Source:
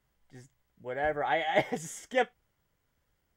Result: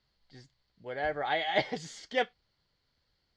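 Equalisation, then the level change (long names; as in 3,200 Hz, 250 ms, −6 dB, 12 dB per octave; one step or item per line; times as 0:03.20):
low-pass with resonance 4,400 Hz, resonance Q 10
−2.5 dB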